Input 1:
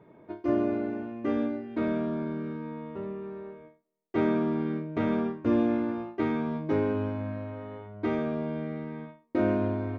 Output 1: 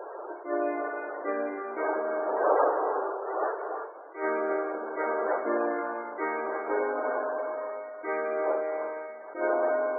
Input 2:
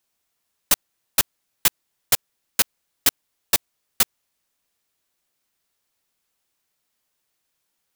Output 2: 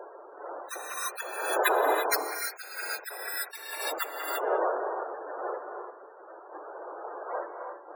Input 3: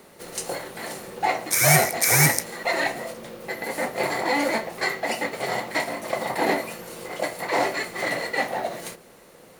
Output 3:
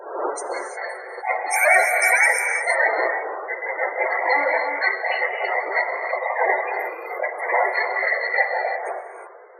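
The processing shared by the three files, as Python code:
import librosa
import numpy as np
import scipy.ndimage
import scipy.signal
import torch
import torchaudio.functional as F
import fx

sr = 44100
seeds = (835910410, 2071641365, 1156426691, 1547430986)

p1 = fx.dmg_wind(x, sr, seeds[0], corner_hz=590.0, level_db=-34.0)
p2 = scipy.signal.sosfilt(scipy.signal.butter(4, 420.0, 'highpass', fs=sr, output='sos'), p1)
p3 = fx.peak_eq(p2, sr, hz=1600.0, db=5.5, octaves=1.2)
p4 = fx.notch(p3, sr, hz=3100.0, q=12.0)
p5 = p4 + fx.echo_bbd(p4, sr, ms=196, stages=4096, feedback_pct=36, wet_db=-17.5, dry=0)
p6 = fx.spec_topn(p5, sr, count=32)
p7 = fx.peak_eq(p6, sr, hz=11000.0, db=2.0, octaves=0.77)
p8 = fx.rev_gated(p7, sr, seeds[1], gate_ms=370, shape='rising', drr_db=5.0)
p9 = fx.attack_slew(p8, sr, db_per_s=170.0)
y = p9 * librosa.db_to_amplitude(2.5)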